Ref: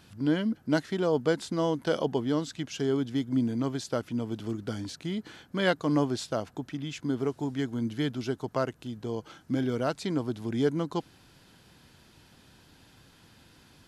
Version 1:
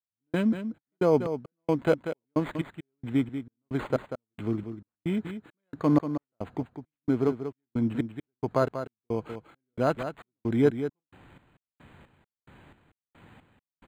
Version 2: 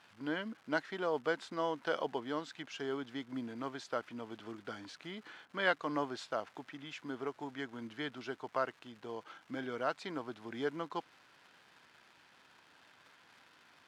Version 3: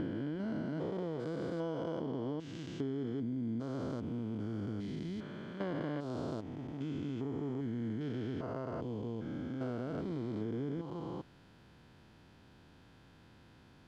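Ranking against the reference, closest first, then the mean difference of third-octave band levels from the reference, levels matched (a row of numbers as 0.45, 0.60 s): 2, 3, 1; 5.5, 7.5, 12.5 dB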